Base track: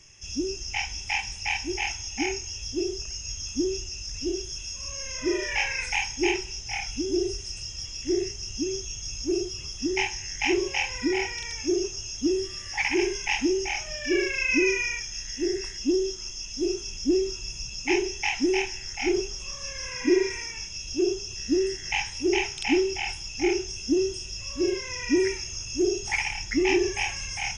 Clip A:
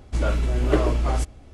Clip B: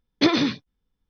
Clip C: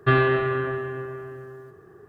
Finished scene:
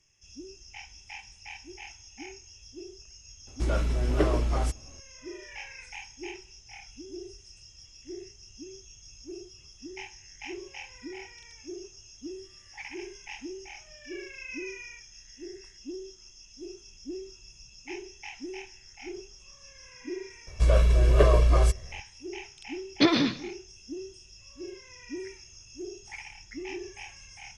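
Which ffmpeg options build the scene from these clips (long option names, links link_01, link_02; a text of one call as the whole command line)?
ffmpeg -i bed.wav -i cue0.wav -i cue1.wav -filter_complex "[1:a]asplit=2[link_01][link_02];[0:a]volume=-15.5dB[link_03];[link_02]aecho=1:1:1.8:0.87[link_04];[2:a]aecho=1:1:190:0.106[link_05];[link_01]atrim=end=1.53,asetpts=PTS-STARTPTS,volume=-4.5dB,afade=type=in:duration=0.004:curve=hsin,afade=type=out:start_time=1.526:duration=0.004:curve=hsin,adelay=3470[link_06];[link_04]atrim=end=1.53,asetpts=PTS-STARTPTS,volume=-2.5dB,afade=type=in:duration=0.004:curve=hsin,afade=type=out:start_time=1.526:duration=0.004:curve=hsin,adelay=20470[link_07];[link_05]atrim=end=1.09,asetpts=PTS-STARTPTS,volume=-2.5dB,afade=type=in:duration=0.004:curve=hsin,afade=type=out:start_time=1.086:duration=0.004:curve=hsin,adelay=22790[link_08];[link_03][link_06][link_07][link_08]amix=inputs=4:normalize=0" out.wav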